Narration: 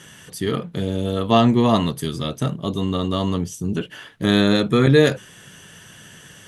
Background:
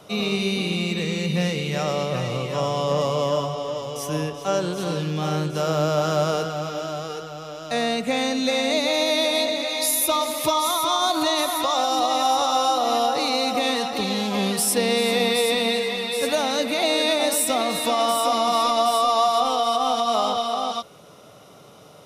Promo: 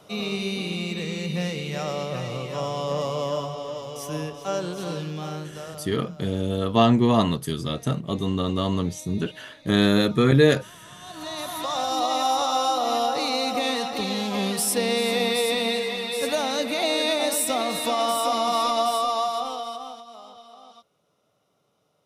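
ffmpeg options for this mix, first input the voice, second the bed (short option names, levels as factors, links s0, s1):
-filter_complex "[0:a]adelay=5450,volume=0.75[s0];[1:a]volume=10,afade=t=out:st=4.94:d=0.98:silence=0.0749894,afade=t=in:st=11:d=1.06:silence=0.0595662,afade=t=out:st=18.78:d=1.27:silence=0.1[s1];[s0][s1]amix=inputs=2:normalize=0"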